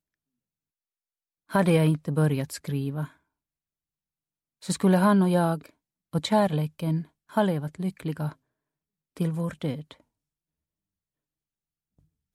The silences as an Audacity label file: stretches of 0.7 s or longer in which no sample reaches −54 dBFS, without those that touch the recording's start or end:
3.170000	4.620000	silence
8.350000	9.170000	silence
10.010000	11.990000	silence